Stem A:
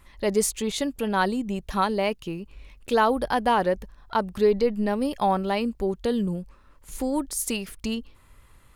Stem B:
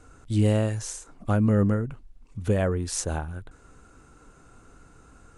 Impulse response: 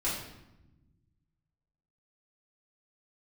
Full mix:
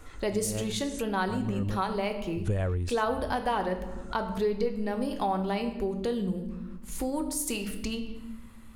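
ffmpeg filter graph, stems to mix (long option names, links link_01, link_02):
-filter_complex "[0:a]volume=-1.5dB,asplit=3[link_01][link_02][link_03];[link_02]volume=-10dB[link_04];[1:a]asubboost=boost=6:cutoff=84,volume=1dB[link_05];[link_03]apad=whole_len=236916[link_06];[link_05][link_06]sidechaincompress=threshold=-37dB:ratio=8:attack=16:release=150[link_07];[2:a]atrim=start_sample=2205[link_08];[link_04][link_08]afir=irnorm=-1:irlink=0[link_09];[link_01][link_07][link_09]amix=inputs=3:normalize=0,acompressor=threshold=-31dB:ratio=2"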